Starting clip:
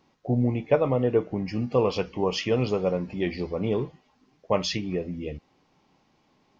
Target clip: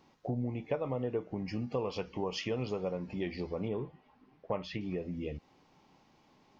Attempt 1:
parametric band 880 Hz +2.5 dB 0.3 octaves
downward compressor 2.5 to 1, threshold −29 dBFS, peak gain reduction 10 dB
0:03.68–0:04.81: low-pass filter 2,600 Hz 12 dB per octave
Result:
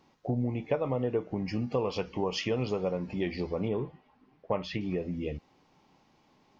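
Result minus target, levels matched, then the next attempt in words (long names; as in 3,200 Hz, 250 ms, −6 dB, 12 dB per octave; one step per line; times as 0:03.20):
downward compressor: peak gain reduction −4.5 dB
parametric band 880 Hz +2.5 dB 0.3 octaves
downward compressor 2.5 to 1, threshold −36.5 dBFS, peak gain reduction 14.5 dB
0:03.68–0:04.81: low-pass filter 2,600 Hz 12 dB per octave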